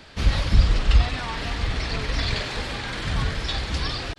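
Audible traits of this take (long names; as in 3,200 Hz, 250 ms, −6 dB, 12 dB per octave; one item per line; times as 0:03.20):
background noise floor −40 dBFS
spectral slope −5.0 dB per octave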